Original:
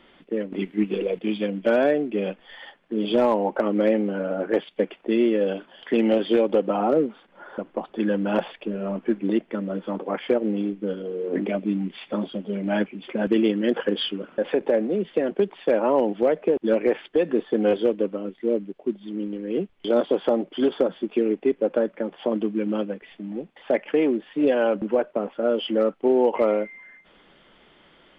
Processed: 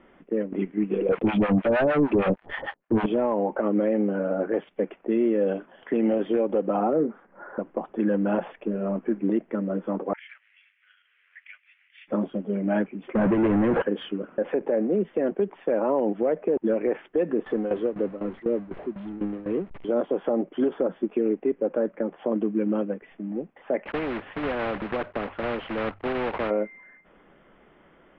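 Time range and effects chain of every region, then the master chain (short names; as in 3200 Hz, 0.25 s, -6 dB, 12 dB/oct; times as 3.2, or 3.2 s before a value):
1.09–3.06 sample leveller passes 5 + harmonic tremolo 6.5 Hz, depth 100%, crossover 740 Hz
6.95–7.6 resonant high shelf 2300 Hz -8 dB, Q 1.5 + doubler 26 ms -13 dB
10.13–12.08 steep high-pass 1800 Hz + upward compressor, threshold -51 dBFS
13.15–13.82 level quantiser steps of 18 dB + power-law curve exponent 0.35 + air absorption 260 m
17.46–19.89 zero-crossing step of -32 dBFS + tremolo saw down 4 Hz, depth 85%
23.85–26.51 block floating point 3-bit + notches 50/100 Hz + spectral compressor 2:1
whole clip: Bessel low-pass 1600 Hz, order 6; notch 900 Hz, Q 28; limiter -16 dBFS; gain +1 dB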